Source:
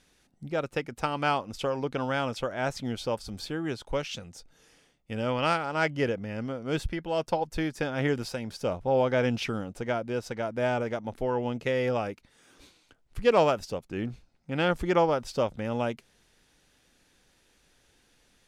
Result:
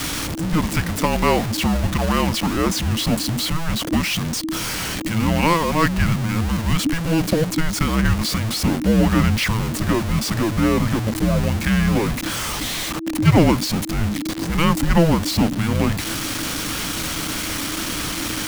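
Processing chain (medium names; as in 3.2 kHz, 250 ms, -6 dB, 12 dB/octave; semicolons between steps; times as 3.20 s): jump at every zero crossing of -26 dBFS; frequency shift -330 Hz; trim +6.5 dB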